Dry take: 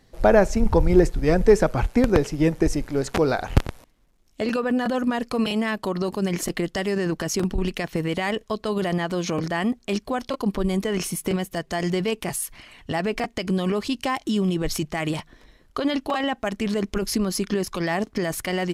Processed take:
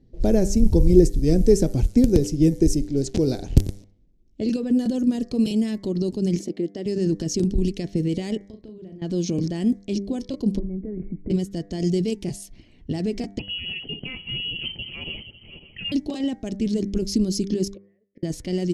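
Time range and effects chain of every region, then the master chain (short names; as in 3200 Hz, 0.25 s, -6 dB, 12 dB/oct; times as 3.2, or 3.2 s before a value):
6.39–6.86 HPF 260 Hz + high shelf 2000 Hz -8.5 dB
8.37–9.02 compressor, threshold -39 dBFS + doubler 37 ms -7 dB
10.59–11.3 tilt -3 dB/oct + compressor, threshold -27 dBFS + rippled Chebyshev low-pass 2300 Hz, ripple 3 dB
13.39–15.92 regenerating reverse delay 0.276 s, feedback 53%, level -9 dB + inverted band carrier 3100 Hz
17.74–18.23 double band-pass 990 Hz, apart 1.9 oct + flipped gate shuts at -31 dBFS, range -28 dB
whole clip: de-hum 99.08 Hz, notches 23; low-pass opened by the level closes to 1800 Hz, open at -16.5 dBFS; EQ curve 340 Hz 0 dB, 1200 Hz -28 dB, 5800 Hz +1 dB; gain +3.5 dB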